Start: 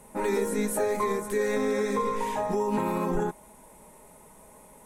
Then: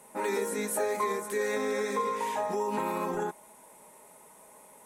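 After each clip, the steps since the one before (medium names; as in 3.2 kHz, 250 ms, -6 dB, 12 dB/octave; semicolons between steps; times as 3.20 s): high-pass 490 Hz 6 dB/octave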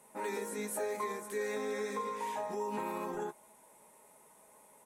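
doubling 14 ms -11 dB; trim -7 dB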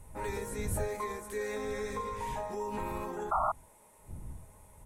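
wind noise 86 Hz -44 dBFS; painted sound noise, 3.31–3.52 s, 600–1400 Hz -29 dBFS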